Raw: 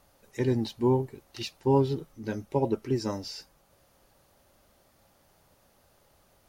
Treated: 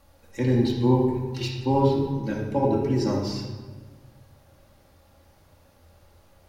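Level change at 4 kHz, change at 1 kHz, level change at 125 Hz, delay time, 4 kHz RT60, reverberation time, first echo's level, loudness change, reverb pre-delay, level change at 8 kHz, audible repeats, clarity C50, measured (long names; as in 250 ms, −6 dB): +3.5 dB, +5.5 dB, +6.5 dB, no echo audible, 0.95 s, 1.4 s, no echo audible, +5.0 dB, 4 ms, +1.5 dB, no echo audible, 2.5 dB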